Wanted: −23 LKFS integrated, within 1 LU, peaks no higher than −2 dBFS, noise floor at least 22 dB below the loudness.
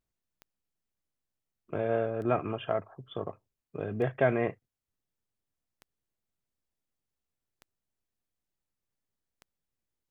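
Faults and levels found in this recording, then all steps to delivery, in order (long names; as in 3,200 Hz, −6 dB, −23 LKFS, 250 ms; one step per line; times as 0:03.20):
number of clicks 6; integrated loudness −32.0 LKFS; sample peak −13.0 dBFS; target loudness −23.0 LKFS
→ click removal
level +9 dB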